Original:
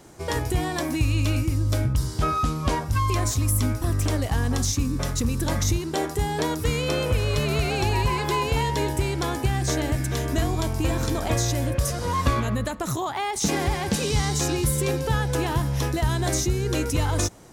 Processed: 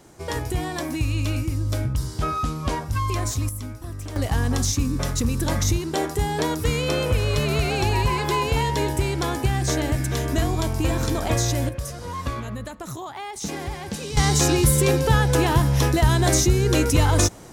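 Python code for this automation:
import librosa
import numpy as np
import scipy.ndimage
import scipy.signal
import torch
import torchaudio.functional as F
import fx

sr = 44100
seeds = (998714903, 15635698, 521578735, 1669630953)

y = fx.gain(x, sr, db=fx.steps((0.0, -1.5), (3.49, -10.0), (4.16, 1.5), (11.69, -6.5), (14.17, 5.5)))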